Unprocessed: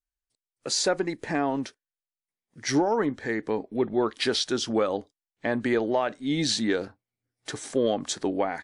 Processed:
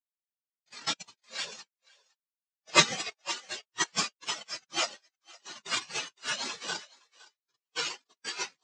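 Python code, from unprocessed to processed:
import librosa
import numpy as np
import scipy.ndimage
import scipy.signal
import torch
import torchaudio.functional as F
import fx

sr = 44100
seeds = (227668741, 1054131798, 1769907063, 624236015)

p1 = fx.noise_vocoder(x, sr, seeds[0], bands=1)
p2 = fx.transient(p1, sr, attack_db=-3, sustain_db=-7, at=(4.43, 4.84))
p3 = p2 + fx.echo_thinned(p2, sr, ms=514, feedback_pct=22, hz=280.0, wet_db=-5.0, dry=0)
p4 = fx.spectral_expand(p3, sr, expansion=4.0)
y = p4 * librosa.db_to_amplitude(4.0)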